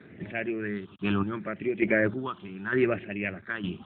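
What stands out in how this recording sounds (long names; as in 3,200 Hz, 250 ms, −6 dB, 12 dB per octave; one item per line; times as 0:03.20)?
chopped level 1.1 Hz, depth 60%, duty 35%
a quantiser's noise floor 10 bits, dither none
phaser sweep stages 6, 0.72 Hz, lowest notch 520–1,100 Hz
AMR narrowband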